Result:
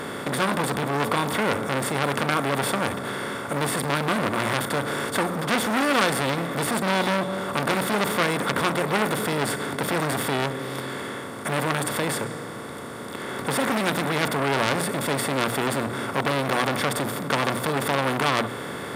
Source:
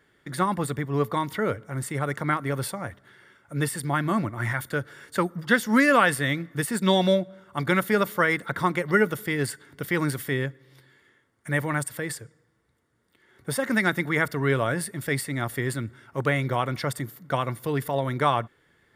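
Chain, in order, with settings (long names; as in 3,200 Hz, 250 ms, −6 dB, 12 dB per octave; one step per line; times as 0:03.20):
compressor on every frequency bin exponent 0.4
parametric band 1,800 Hz −7 dB 0.55 octaves
mains-hum notches 60/120/180/240/300 Hz
saturating transformer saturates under 3,000 Hz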